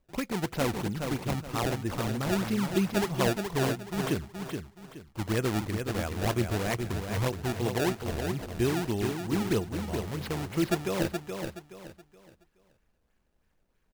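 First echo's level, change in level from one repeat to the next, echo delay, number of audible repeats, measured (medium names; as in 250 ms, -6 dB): -6.0 dB, -10.0 dB, 423 ms, 3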